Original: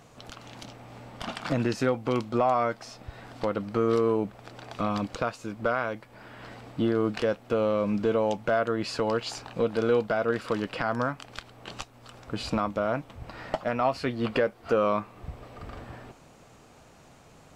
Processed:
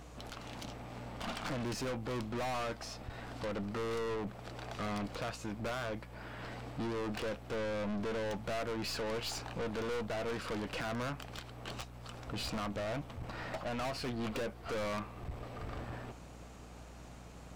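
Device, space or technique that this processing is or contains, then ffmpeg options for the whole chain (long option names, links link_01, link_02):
valve amplifier with mains hum: -af "aeval=exprs='(tanh(63.1*val(0)+0.4)-tanh(0.4))/63.1':channel_layout=same,aeval=exprs='val(0)+0.00224*(sin(2*PI*60*n/s)+sin(2*PI*2*60*n/s)/2+sin(2*PI*3*60*n/s)/3+sin(2*PI*4*60*n/s)/4+sin(2*PI*5*60*n/s)/5)':channel_layout=same,volume=1dB"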